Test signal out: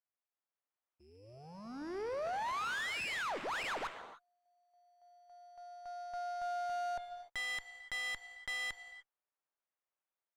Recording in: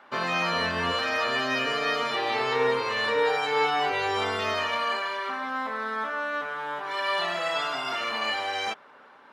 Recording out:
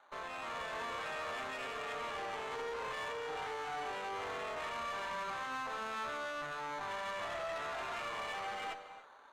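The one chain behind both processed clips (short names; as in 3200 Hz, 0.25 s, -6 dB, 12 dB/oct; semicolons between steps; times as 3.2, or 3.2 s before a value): limiter -23 dBFS; sample-rate reducer 5200 Hz, jitter 0%; AGC gain up to 5 dB; high shelf 2500 Hz -11.5 dB; added harmonics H 5 -21 dB, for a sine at -18 dBFS; HPF 560 Hz 12 dB/oct; air absorption 74 m; non-linear reverb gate 0.33 s flat, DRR 10.5 dB; tube stage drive 28 dB, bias 0.7; gain -6.5 dB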